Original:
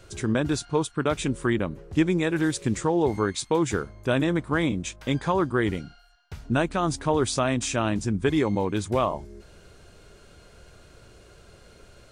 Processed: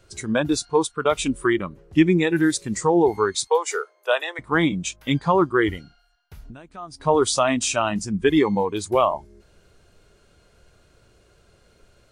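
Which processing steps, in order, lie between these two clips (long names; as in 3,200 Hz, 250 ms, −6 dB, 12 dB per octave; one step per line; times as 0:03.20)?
0:03.47–0:04.39: Butterworth high-pass 410 Hz 48 dB per octave
0:06.37–0:07.00: downward compressor 10 to 1, threshold −33 dBFS, peak gain reduction 15.5 dB
noise reduction from a noise print of the clip's start 12 dB
level +6 dB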